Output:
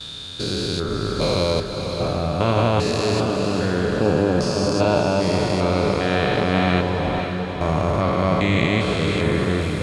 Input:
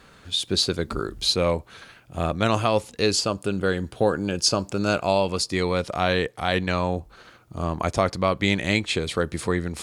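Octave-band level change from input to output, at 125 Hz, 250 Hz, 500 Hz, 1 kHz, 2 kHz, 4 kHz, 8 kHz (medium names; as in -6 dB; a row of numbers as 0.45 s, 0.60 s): +7.0 dB, +5.5 dB, +4.0 dB, +3.5 dB, +2.5 dB, -1.0 dB, -4.5 dB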